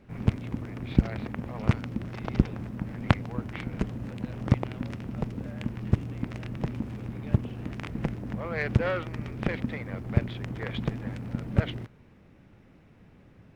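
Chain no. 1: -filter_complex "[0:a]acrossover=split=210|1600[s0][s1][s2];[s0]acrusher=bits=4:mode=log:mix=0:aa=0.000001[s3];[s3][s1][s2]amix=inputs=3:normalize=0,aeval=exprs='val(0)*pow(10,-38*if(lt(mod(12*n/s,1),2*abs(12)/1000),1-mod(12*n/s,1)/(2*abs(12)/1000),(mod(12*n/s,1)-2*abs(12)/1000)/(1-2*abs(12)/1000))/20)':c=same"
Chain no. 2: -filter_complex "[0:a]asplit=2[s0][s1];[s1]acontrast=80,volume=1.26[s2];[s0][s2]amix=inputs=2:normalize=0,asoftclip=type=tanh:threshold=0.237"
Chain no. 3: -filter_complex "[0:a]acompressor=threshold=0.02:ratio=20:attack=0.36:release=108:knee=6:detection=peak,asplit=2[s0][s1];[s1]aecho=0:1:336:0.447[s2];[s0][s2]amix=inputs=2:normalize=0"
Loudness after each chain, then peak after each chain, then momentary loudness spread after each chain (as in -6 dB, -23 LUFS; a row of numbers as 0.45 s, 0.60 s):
-40.5 LUFS, -24.0 LUFS, -41.5 LUFS; -11.5 dBFS, -12.5 dBFS, -27.5 dBFS; 13 LU, 4 LU, 6 LU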